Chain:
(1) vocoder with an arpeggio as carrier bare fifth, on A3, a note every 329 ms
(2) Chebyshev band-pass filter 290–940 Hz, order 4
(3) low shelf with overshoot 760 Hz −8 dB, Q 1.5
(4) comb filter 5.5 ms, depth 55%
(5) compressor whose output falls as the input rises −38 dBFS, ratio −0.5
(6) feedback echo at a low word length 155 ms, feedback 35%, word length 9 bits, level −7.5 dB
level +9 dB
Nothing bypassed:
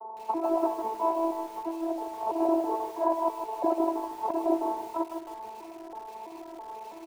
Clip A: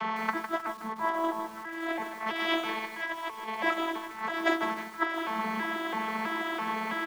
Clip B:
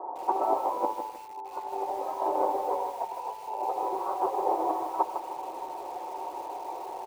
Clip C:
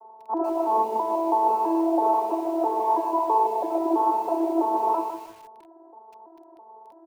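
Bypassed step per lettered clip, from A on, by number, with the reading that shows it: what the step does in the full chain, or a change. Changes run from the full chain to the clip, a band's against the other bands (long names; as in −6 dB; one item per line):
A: 2, 2 kHz band +27.0 dB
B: 1, 250 Hz band −11.0 dB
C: 5, change in crest factor −4.5 dB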